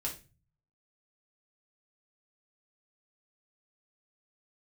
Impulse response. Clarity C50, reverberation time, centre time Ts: 10.0 dB, 0.30 s, 17 ms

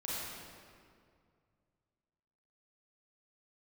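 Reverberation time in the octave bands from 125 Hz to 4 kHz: 3.0 s, 2.5 s, 2.3 s, 2.1 s, 1.8 s, 1.5 s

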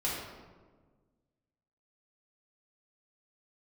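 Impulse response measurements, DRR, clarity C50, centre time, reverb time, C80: -7.0 dB, 0.5 dB, 77 ms, 1.5 s, 2.5 dB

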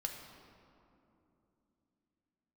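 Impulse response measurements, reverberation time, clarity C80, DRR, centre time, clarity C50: 3.0 s, 6.0 dB, 2.0 dB, 55 ms, 5.0 dB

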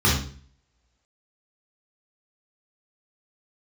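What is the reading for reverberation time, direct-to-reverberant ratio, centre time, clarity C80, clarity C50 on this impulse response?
0.45 s, -6.0 dB, 41 ms, 8.5 dB, 3.0 dB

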